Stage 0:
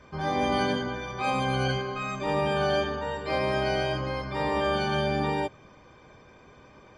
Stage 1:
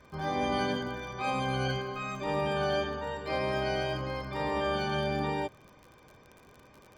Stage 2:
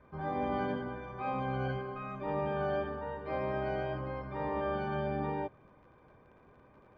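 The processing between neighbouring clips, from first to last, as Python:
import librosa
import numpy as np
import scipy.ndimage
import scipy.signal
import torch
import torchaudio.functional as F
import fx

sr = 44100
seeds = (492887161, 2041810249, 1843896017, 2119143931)

y1 = fx.dmg_crackle(x, sr, seeds[0], per_s=44.0, level_db=-38.0)
y1 = F.gain(torch.from_numpy(y1), -4.0).numpy()
y2 = scipy.signal.sosfilt(scipy.signal.butter(2, 1600.0, 'lowpass', fs=sr, output='sos'), y1)
y2 = F.gain(torch.from_numpy(y2), -3.0).numpy()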